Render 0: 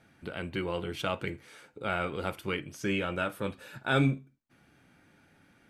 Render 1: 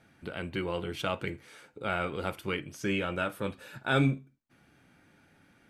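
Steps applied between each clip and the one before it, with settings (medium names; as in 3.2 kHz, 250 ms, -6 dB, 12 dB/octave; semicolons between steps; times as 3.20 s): no audible change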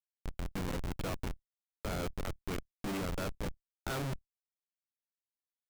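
Schmitt trigger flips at -30 dBFS; level held to a coarse grid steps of 15 dB; trim +9.5 dB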